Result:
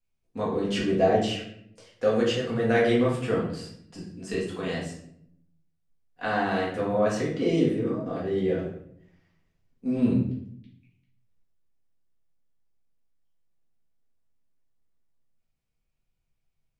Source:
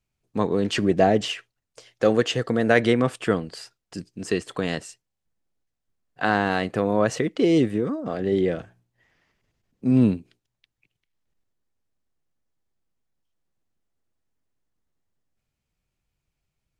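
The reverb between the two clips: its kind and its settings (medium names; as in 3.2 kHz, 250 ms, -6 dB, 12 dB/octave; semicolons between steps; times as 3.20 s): simulated room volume 130 m³, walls mixed, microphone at 1.8 m; trim -11 dB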